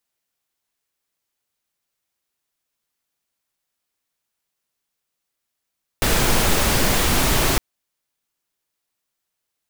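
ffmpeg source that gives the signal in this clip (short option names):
-f lavfi -i "anoisesrc=c=pink:a=0.684:d=1.56:r=44100:seed=1"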